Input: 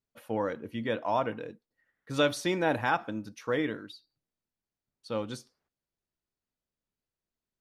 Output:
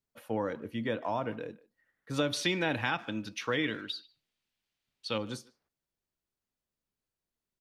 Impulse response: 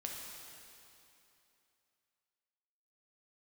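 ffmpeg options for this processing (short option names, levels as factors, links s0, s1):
-filter_complex "[0:a]asettb=1/sr,asplit=3[s0][s1][s2];[s0]atrim=end=2.334[s3];[s1]atrim=start=2.33:end=5.18,asetpts=PTS-STARTPTS,afade=t=in:d=0.004:c=qsin,afade=t=out:st=2.846:d=0.004:c=qsin,equalizer=f=3000:w=0.73:g=14.5[s4];[s2]atrim=start=5.176[s5];[s3][s4]acrossfade=d=0.004:c1=hsin:c2=qsin[s6];[s6][s5]acrossfade=d=0.004:c1=qsin:c2=hsin,acrossover=split=310[s7][s8];[s8]acompressor=threshold=0.0282:ratio=3[s9];[s7][s9]amix=inputs=2:normalize=0,asplit=2[s10][s11];[s11]adelay=150,highpass=300,lowpass=3400,asoftclip=type=hard:threshold=0.0473,volume=0.0891[s12];[s10][s12]amix=inputs=2:normalize=0"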